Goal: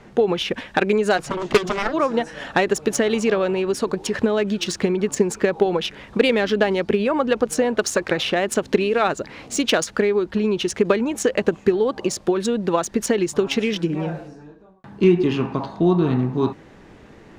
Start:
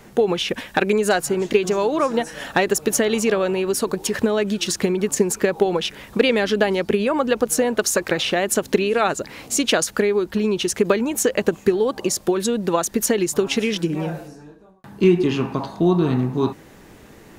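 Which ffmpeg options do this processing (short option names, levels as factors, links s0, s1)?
-filter_complex "[0:a]asplit=3[s0][s1][s2];[s0]afade=t=out:st=1.17:d=0.02[s3];[s1]aeval=exprs='0.562*(cos(1*acos(clip(val(0)/0.562,-1,1)))-cos(1*PI/2))+0.178*(cos(7*acos(clip(val(0)/0.562,-1,1)))-cos(7*PI/2))':c=same,afade=t=in:st=1.17:d=0.02,afade=t=out:st=1.92:d=0.02[s4];[s2]afade=t=in:st=1.92:d=0.02[s5];[s3][s4][s5]amix=inputs=3:normalize=0,adynamicsmooth=sensitivity=1:basefreq=5000"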